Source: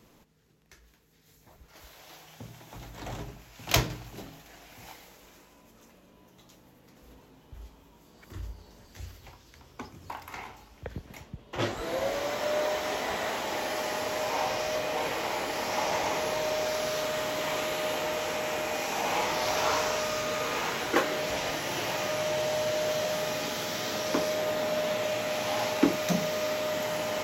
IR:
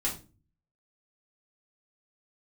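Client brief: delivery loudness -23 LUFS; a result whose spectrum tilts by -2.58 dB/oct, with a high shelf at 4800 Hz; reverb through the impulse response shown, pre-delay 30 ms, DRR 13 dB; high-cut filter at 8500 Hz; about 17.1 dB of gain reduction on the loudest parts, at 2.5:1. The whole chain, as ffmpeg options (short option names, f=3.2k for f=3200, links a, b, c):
-filter_complex "[0:a]lowpass=8.5k,highshelf=f=4.8k:g=7.5,acompressor=threshold=-45dB:ratio=2.5,asplit=2[a][b];[1:a]atrim=start_sample=2205,adelay=30[c];[b][c]afir=irnorm=-1:irlink=0,volume=-18.5dB[d];[a][d]amix=inputs=2:normalize=0,volume=19dB"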